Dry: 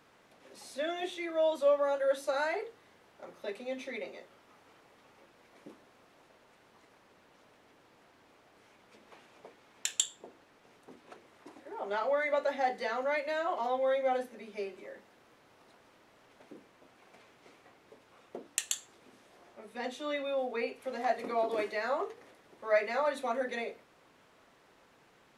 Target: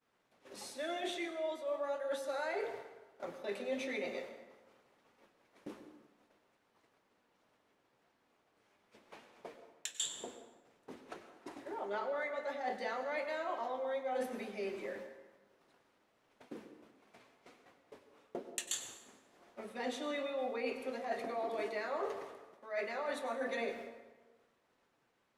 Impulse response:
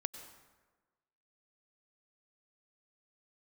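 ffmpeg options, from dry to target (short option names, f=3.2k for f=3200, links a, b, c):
-filter_complex "[0:a]agate=range=-33dB:threshold=-51dB:ratio=3:detection=peak,areverse,acompressor=threshold=-39dB:ratio=20,areverse,flanger=delay=4:depth=6.1:regen=76:speed=0.97:shape=sinusoidal[a];[1:a]atrim=start_sample=2205[b];[a][b]afir=irnorm=-1:irlink=0,volume=9.5dB"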